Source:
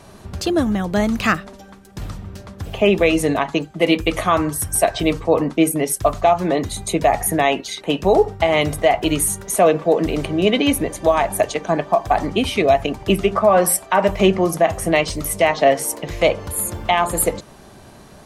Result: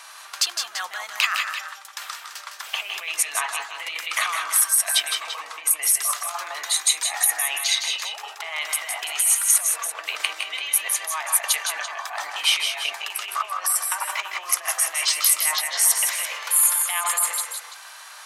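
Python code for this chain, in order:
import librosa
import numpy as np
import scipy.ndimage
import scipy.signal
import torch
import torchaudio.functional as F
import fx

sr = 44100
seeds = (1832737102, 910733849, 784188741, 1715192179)

p1 = fx.over_compress(x, sr, threshold_db=-23.0, ratio=-1.0)
p2 = scipy.signal.sosfilt(scipy.signal.butter(4, 1100.0, 'highpass', fs=sr, output='sos'), p1)
p3 = p2 + fx.echo_multitap(p2, sr, ms=(159, 178, 338), db=(-7.0, -9.5, -11.5), dry=0)
y = p3 * librosa.db_to_amplitude(3.0)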